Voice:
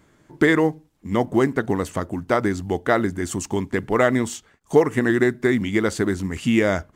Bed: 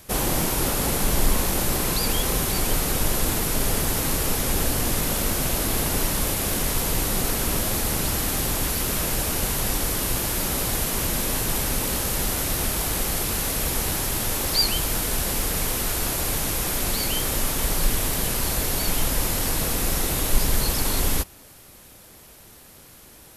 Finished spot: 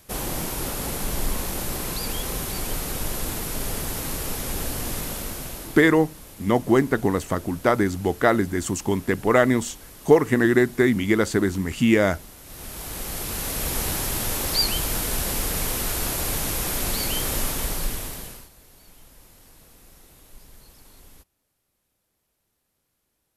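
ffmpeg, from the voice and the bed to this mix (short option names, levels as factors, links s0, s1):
-filter_complex "[0:a]adelay=5350,volume=1.06[s0];[1:a]volume=4.73,afade=t=out:st=4.97:d=0.97:silence=0.188365,afade=t=in:st=12.43:d=1.39:silence=0.112202,afade=t=out:st=17.4:d=1.09:silence=0.0473151[s1];[s0][s1]amix=inputs=2:normalize=0"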